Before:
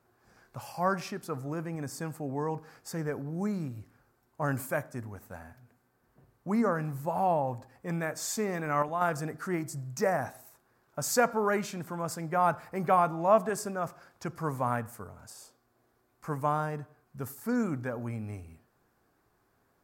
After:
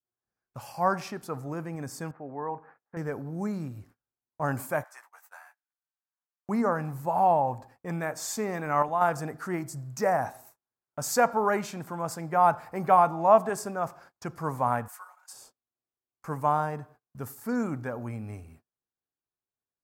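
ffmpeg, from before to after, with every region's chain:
ffmpeg -i in.wav -filter_complex "[0:a]asettb=1/sr,asplit=3[link_01][link_02][link_03];[link_01]atrim=end=2.114[link_04];[link_02]atrim=start=2.11:end=2.97,asetpts=PTS-STARTPTS,afade=type=in:duration=0.004:curve=qsin,afade=type=out:start_time=0.856:duration=0.004:curve=qsin,lowpass=frequency=1900:width=0.5412,lowpass=frequency=1900:width=1.3066,lowshelf=frequency=280:gain=-12[link_05];[link_03]atrim=start=2.966[link_06];[link_04][link_05]acrossfade=duration=0.004:curve1=hsin:curve2=qsin[link_07];[link_07][link_06]acrossfade=duration=0.004:curve1=qsin:curve2=hsin,asettb=1/sr,asplit=3[link_08][link_09][link_10];[link_08]atrim=end=4.844[link_11];[link_09]atrim=start=4.84:end=6.49,asetpts=PTS-STARTPTS,afade=type=in:duration=0.004:curve=qsin,afade=type=out:start_time=1.646:duration=0.004:curve=qsin,highpass=frequency=920:width=0.5412,highpass=frequency=920:width=1.3066,asplit=2[link_12][link_13];[link_13]adelay=15,volume=-4dB[link_14];[link_12][link_14]amix=inputs=2:normalize=0,atrim=end_sample=72765[link_15];[link_10]atrim=start=6.486[link_16];[link_11][link_15]acrossfade=duration=0.004:curve1=hsin:curve2=qsin[link_17];[link_17][link_16]acrossfade=duration=0.004:curve1=qsin:curve2=hsin,asettb=1/sr,asplit=3[link_18][link_19][link_20];[link_18]atrim=end=14.884[link_21];[link_19]atrim=start=14.88:end=15.33,asetpts=PTS-STARTPTS,afade=type=in:duration=0.004:curve=qsin,afade=type=out:start_time=0.446:duration=0.004:curve=qsin,highpass=frequency=950:width=0.5412,highpass=frequency=950:width=1.3066,aecho=1:1:5.5:0.92,atrim=end_sample=19845[link_22];[link_20]atrim=start=15.326[link_23];[link_21][link_22]acrossfade=duration=0.004:curve1=hsin:curve2=qsin[link_24];[link_24][link_23]acrossfade=duration=0.004:curve1=qsin:curve2=hsin,agate=range=-30dB:threshold=-54dB:ratio=16:detection=peak,adynamicequalizer=threshold=0.00891:dfrequency=840:dqfactor=1.8:tfrequency=840:tqfactor=1.8:attack=5:release=100:ratio=0.375:range=3.5:mode=boostabove:tftype=bell" out.wav

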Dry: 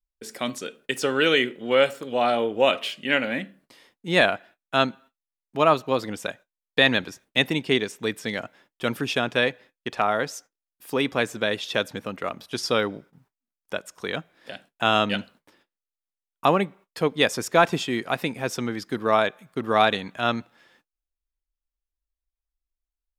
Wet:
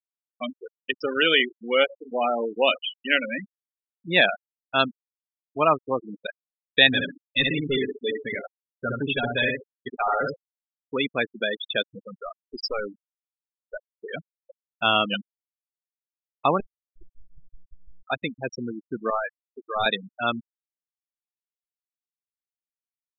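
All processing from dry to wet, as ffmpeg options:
ffmpeg -i in.wav -filter_complex "[0:a]asettb=1/sr,asplit=3[link_01][link_02][link_03];[link_01]atrim=end=6.874[link_04];[link_02]atrim=start=6.87:end=10.36,asetpts=PTS-STARTPTS,afade=type=in:duration=0.004:curve=qsin,afade=type=out:start_time=3.486:duration=0.004:curve=qsin,aecho=1:1:7.2:0.6,atrim=end_sample=153909,asplit=2[link_05][link_06];[link_06]adelay=66,lowpass=frequency=2600:poles=1,volume=-3dB,asplit=2[link_07][link_08];[link_08]adelay=66,lowpass=frequency=2600:poles=1,volume=0.36,asplit=2[link_09][link_10];[link_10]adelay=66,lowpass=frequency=2600:poles=1,volume=0.36,asplit=2[link_11][link_12];[link_12]adelay=66,lowpass=frequency=2600:poles=1,volume=0.36,asplit=2[link_13][link_14];[link_14]adelay=66,lowpass=frequency=2600:poles=1,volume=0.36[link_15];[link_05][link_07][link_09][link_11][link_13][link_15]amix=inputs=6:normalize=0,atrim=end_sample=153909,volume=17.5dB,asoftclip=hard,volume=-17.5dB[link_16];[link_03]atrim=start=10.356[link_17];[link_04][link_16]acrossfade=duration=0.004:curve1=hsin:curve2=qsin[link_18];[link_18][link_17]acrossfade=duration=0.004:curve1=qsin:curve2=hsin,asettb=1/sr,asplit=3[link_19][link_20][link_21];[link_19]atrim=end=11.924[link_22];[link_20]atrim=start=11.92:end=14.1,asetpts=PTS-STARTPTS,afade=type=in:duration=0.004:curve=qsin,afade=type=out:start_time=2.176:duration=0.004:curve=qsin,aeval=exprs='clip(val(0),-1,0.0398)':channel_layout=same,asuperstop=centerf=3700:order=4:qfactor=5.2[link_23];[link_21]atrim=start=14.096[link_24];[link_22][link_23]acrossfade=duration=0.004:curve1=hsin:curve2=qsin[link_25];[link_25][link_24]acrossfade=duration=0.004:curve1=qsin:curve2=hsin,asettb=1/sr,asplit=3[link_26][link_27][link_28];[link_26]atrim=end=16.604[link_29];[link_27]atrim=start=16.6:end=18.06,asetpts=PTS-STARTPTS,afade=type=in:duration=0.004:curve=qsin,afade=type=out:start_time=1.456:duration=0.004:curve=qsin,equalizer=frequency=1800:width_type=o:width=1.6:gain=-5.5,acompressor=threshold=-30dB:ratio=16:attack=3.2:release=140:knee=1:detection=peak,aeval=exprs='abs(val(0))':channel_layout=same[link_30];[link_28]atrim=start=18.056[link_31];[link_29][link_30]acrossfade=duration=0.004:curve1=hsin:curve2=qsin[link_32];[link_32][link_31]acrossfade=duration=0.004:curve1=qsin:curve2=hsin,asettb=1/sr,asplit=3[link_33][link_34][link_35];[link_33]atrim=end=19.104[link_36];[link_34]atrim=start=19.1:end=19.86,asetpts=PTS-STARTPTS,afade=type=in:duration=0.004:curve=qsin,afade=type=out:start_time=0.756:duration=0.004:curve=qsin,highpass=frequency=830:poles=1,aeval=exprs='clip(val(0),-1,0.0668)':channel_layout=same[link_37];[link_35]atrim=start=19.856[link_38];[link_36][link_37]acrossfade=duration=0.004:curve1=hsin:curve2=qsin[link_39];[link_39][link_38]acrossfade=duration=0.004:curve1=qsin:curve2=hsin,afftfilt=real='re*gte(hypot(re,im),0.126)':imag='im*gte(hypot(re,im),0.126)':win_size=1024:overlap=0.75,highshelf=frequency=2100:gain=11,volume=-3dB" out.wav

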